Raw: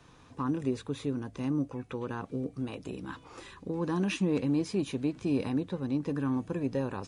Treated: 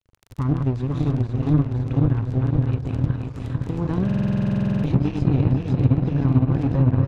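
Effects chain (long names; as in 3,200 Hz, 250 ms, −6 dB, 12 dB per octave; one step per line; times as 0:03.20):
feedback delay that plays each chunk backwards 256 ms, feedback 78%, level −3 dB
bass and treble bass +15 dB, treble −4 dB
in parallel at 0 dB: downward compressor, threshold −29 dBFS, peak gain reduction 15.5 dB
on the sum: harmonic generator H 7 −25 dB, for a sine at −4.5 dBFS
dead-zone distortion −38 dBFS
low shelf with overshoot 140 Hz +7.5 dB, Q 1.5
on a send: single-tap delay 319 ms −21 dB
on the sum: surface crackle 16 per second −24 dBFS
treble cut that deepens with the level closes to 2,500 Hz, closed at −11 dBFS
buffer that repeats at 0:04.05, samples 2,048, times 16
level −2 dB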